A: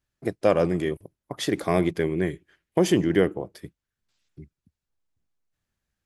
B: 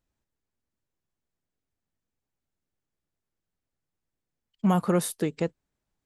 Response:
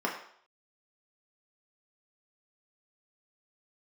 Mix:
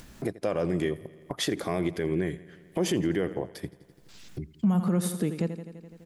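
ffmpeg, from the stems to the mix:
-filter_complex "[0:a]volume=0.5dB,asplit=2[a][b];[b]volume=-21dB[c];[1:a]equalizer=f=200:t=o:w=0.88:g=11.5,volume=-0.5dB,asplit=2[d][e];[e]volume=-13.5dB[f];[c][f]amix=inputs=2:normalize=0,aecho=0:1:84|168|252|336|420|504|588|672:1|0.54|0.292|0.157|0.085|0.0459|0.0248|0.0134[g];[a][d][g]amix=inputs=3:normalize=0,acompressor=mode=upward:threshold=-27dB:ratio=2.5,alimiter=limit=-17dB:level=0:latency=1:release=104"

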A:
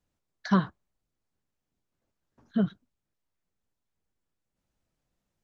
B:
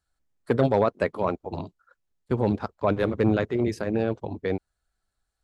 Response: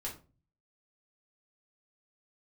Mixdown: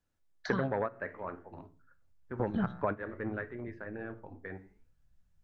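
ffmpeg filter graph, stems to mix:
-filter_complex "[0:a]asubboost=boost=10.5:cutoff=110,volume=-4.5dB,asplit=3[a][b][c];[b]volume=-10.5dB[d];[1:a]lowpass=f=1.7k:t=q:w=4.1,flanger=delay=6.5:depth=9.8:regen=84:speed=0.56:shape=sinusoidal,volume=0.5dB,asplit=2[e][f];[f]volume=-21.5dB[g];[c]apad=whole_len=239636[h];[e][h]sidechaingate=range=-15dB:threshold=-59dB:ratio=16:detection=peak[i];[2:a]atrim=start_sample=2205[j];[d][g]amix=inputs=2:normalize=0[k];[k][j]afir=irnorm=-1:irlink=0[l];[a][i][l]amix=inputs=3:normalize=0,acompressor=threshold=-27dB:ratio=10"

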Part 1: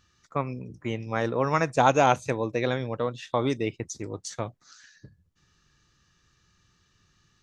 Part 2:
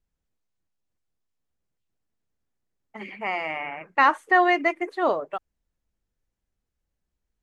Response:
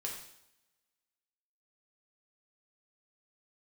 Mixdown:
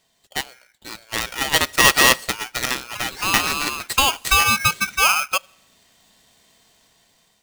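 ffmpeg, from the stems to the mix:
-filter_complex "[0:a]highpass=850,aeval=exprs='0.355*(cos(1*acos(clip(val(0)/0.355,-1,1)))-cos(1*PI/2))+0.0891*(cos(8*acos(clip(val(0)/0.355,-1,1)))-cos(8*PI/2))':c=same,volume=2.5dB,asplit=2[a][b];[b]volume=-21dB[c];[1:a]equalizer=f=740:w=0.95:g=7,acompressor=threshold=-16dB:ratio=6,volume=-3.5dB,asplit=2[d][e];[e]volume=-22dB[f];[2:a]atrim=start_sample=2205[g];[c][f]amix=inputs=2:normalize=0[h];[h][g]afir=irnorm=-1:irlink=0[i];[a][d][i]amix=inputs=3:normalize=0,dynaudnorm=f=610:g=5:m=13dB,aeval=exprs='val(0)*sgn(sin(2*PI*1900*n/s))':c=same"

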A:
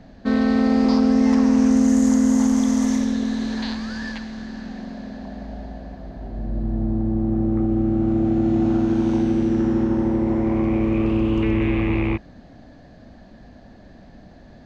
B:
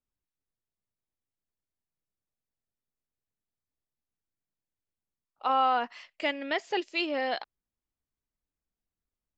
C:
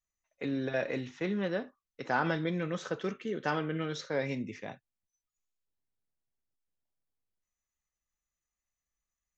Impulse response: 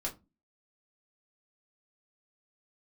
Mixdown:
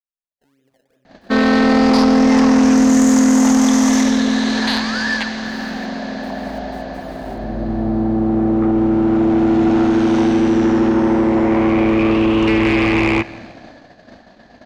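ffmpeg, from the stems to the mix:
-filter_complex "[0:a]asplit=2[a][b];[b]highpass=f=720:p=1,volume=19dB,asoftclip=type=tanh:threshold=-7.5dB[c];[a][c]amix=inputs=2:normalize=0,lowpass=f=6.9k:p=1,volume=-6dB,adelay=1050,volume=2.5dB,asplit=2[d][e];[e]volume=-21dB[f];[1:a]asubboost=boost=11:cutoff=240,volume=-15dB[g];[2:a]lowpass=2.5k,acompressor=threshold=-35dB:ratio=2,volume=-13dB,asplit=2[h][i];[i]volume=-7dB[j];[g][h]amix=inputs=2:normalize=0,acrusher=samples=26:mix=1:aa=0.000001:lfo=1:lforange=26:lforate=2.8,alimiter=level_in=13dB:limit=-24dB:level=0:latency=1,volume=-13dB,volume=0dB[k];[f][j]amix=inputs=2:normalize=0,aecho=0:1:172|344|516|688|860|1032|1204:1|0.51|0.26|0.133|0.0677|0.0345|0.0176[l];[d][k][l]amix=inputs=3:normalize=0,agate=range=-13dB:threshold=-35dB:ratio=16:detection=peak"

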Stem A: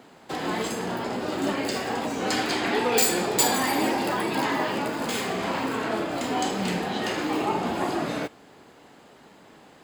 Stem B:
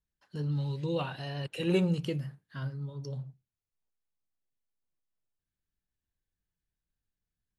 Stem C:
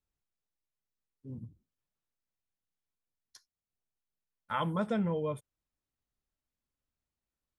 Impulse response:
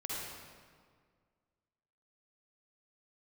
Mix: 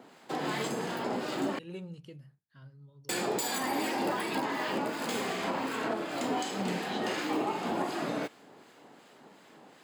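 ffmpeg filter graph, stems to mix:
-filter_complex "[0:a]highpass=150,acrossover=split=1300[a][b];[a]aeval=exprs='val(0)*(1-0.5/2+0.5/2*cos(2*PI*2.7*n/s))':c=same[c];[b]aeval=exprs='val(0)*(1-0.5/2-0.5/2*cos(2*PI*2.7*n/s))':c=same[d];[c][d]amix=inputs=2:normalize=0,volume=-1.5dB,asplit=3[e][f][g];[e]atrim=end=1.59,asetpts=PTS-STARTPTS,afade=t=out:st=1.586:d=0.004:c=hsin[h];[f]atrim=start=1.59:end=3.09,asetpts=PTS-STARTPTS,volume=0[i];[g]atrim=start=3.09,asetpts=PTS-STARTPTS,afade=t=in:d=0.004:c=hsin[j];[h][i][j]concat=n=3:v=0:a=1[k];[1:a]volume=-15.5dB[l];[k][l]amix=inputs=2:normalize=0,alimiter=limit=-21.5dB:level=0:latency=1:release=216,volume=0dB"

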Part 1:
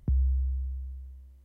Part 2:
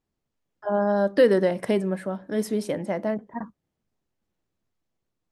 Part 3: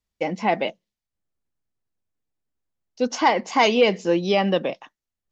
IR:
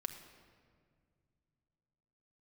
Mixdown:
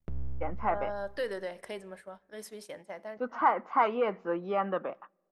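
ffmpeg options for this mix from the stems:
-filter_complex "[0:a]aeval=exprs='max(val(0),0)':c=same,volume=-4dB,asplit=2[a][b];[b]volume=-12.5dB[c];[1:a]equalizer=f=230:t=o:w=2.2:g=-11.5,acontrast=48,volume=-16.5dB,asplit=2[d][e];[e]volume=-10.5dB[f];[2:a]lowpass=f=1.3k:t=q:w=7.4,adelay=200,volume=-11.5dB,asplit=2[g][h];[h]volume=-19.5dB[i];[3:a]atrim=start_sample=2205[j];[c][f][i]amix=inputs=3:normalize=0[k];[k][j]afir=irnorm=-1:irlink=0[l];[a][d][g][l]amix=inputs=4:normalize=0,agate=range=-8dB:threshold=-46dB:ratio=16:detection=peak,equalizer=f=100:w=0.43:g=-6.5"

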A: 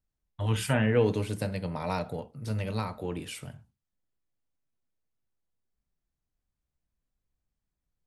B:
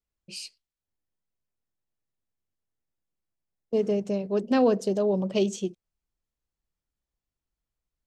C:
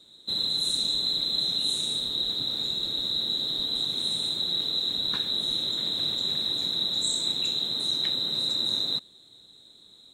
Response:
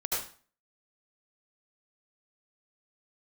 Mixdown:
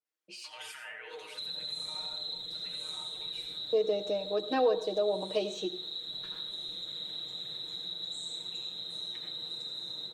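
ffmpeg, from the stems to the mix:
-filter_complex "[0:a]highpass=920,alimiter=level_in=5.5dB:limit=-24dB:level=0:latency=1,volume=-5.5dB,adelay=50,volume=-1dB,asplit=2[a][b];[b]volume=-13.5dB[c];[1:a]deesser=0.95,highpass=f=300:w=0.5412,highpass=f=300:w=1.3066,dynaudnorm=f=120:g=9:m=14.5dB,volume=-6.5dB,asplit=2[d][e];[e]volume=-19dB[f];[2:a]adelay=1100,volume=-3dB,asplit=2[g][h];[h]volume=-13dB[i];[a][g]amix=inputs=2:normalize=0,highpass=1.4k,acompressor=threshold=-35dB:ratio=6,volume=0dB[j];[3:a]atrim=start_sample=2205[k];[c][f][i]amix=inputs=3:normalize=0[l];[l][k]afir=irnorm=-1:irlink=0[m];[d][j][m]amix=inputs=3:normalize=0,highshelf=f=4.7k:g=-9,aecho=1:1:6.4:0.89,acompressor=threshold=-47dB:ratio=1.5"

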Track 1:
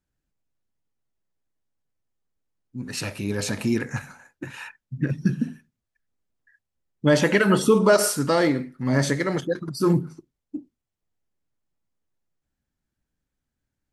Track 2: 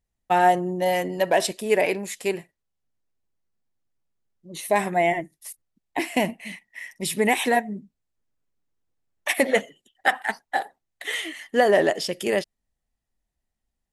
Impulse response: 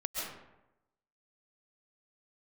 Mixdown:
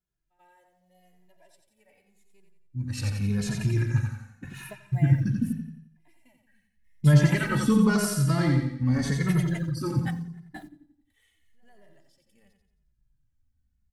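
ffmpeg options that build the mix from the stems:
-filter_complex "[0:a]volume=-5dB,asplit=3[a][b][c];[b]volume=-4.5dB[d];[1:a]highshelf=f=7.3k:g=7.5,acrusher=bits=8:dc=4:mix=0:aa=0.000001,volume=-15.5dB,asplit=2[e][f];[f]volume=-22dB[g];[c]apad=whole_len=614049[h];[e][h]sidechaingate=range=-38dB:threshold=-47dB:ratio=16:detection=peak[i];[d][g]amix=inputs=2:normalize=0,aecho=0:1:88|176|264|352|440|528:1|0.45|0.202|0.0911|0.041|0.0185[j];[a][i][j]amix=inputs=3:normalize=0,asubboost=boost=12:cutoff=120,asplit=2[k][l];[l]adelay=2.4,afreqshift=-0.86[m];[k][m]amix=inputs=2:normalize=1"

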